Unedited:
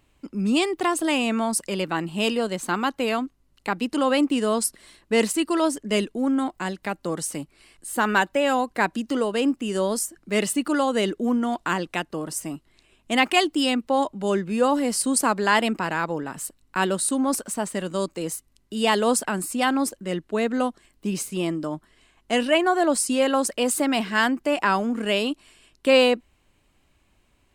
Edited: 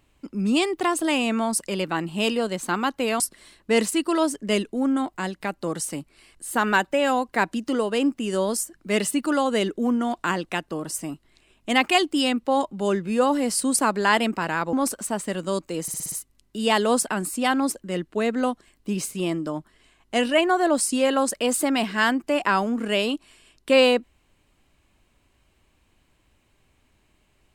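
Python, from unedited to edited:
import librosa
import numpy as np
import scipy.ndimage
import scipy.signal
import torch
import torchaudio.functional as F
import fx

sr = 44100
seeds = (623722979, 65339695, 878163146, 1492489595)

y = fx.edit(x, sr, fx.cut(start_s=3.2, length_s=1.42),
    fx.cut(start_s=16.15, length_s=1.05),
    fx.stutter(start_s=18.29, slice_s=0.06, count=6), tone=tone)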